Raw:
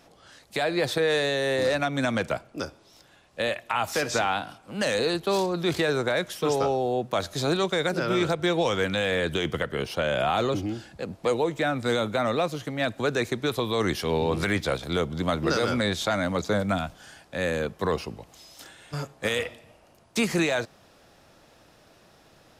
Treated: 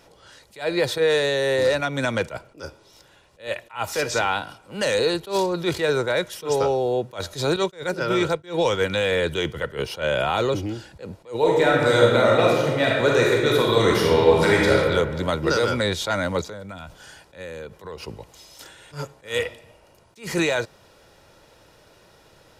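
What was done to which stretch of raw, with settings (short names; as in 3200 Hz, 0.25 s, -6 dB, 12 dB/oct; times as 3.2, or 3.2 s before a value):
7.56–8.9 expander -27 dBFS
11.38–14.74 reverb throw, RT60 1.6 s, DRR -3.5 dB
16.42–18.03 compressor 8:1, threshold -35 dBFS
whole clip: comb 2.1 ms, depth 38%; attack slew limiter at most 210 dB/s; gain +2.5 dB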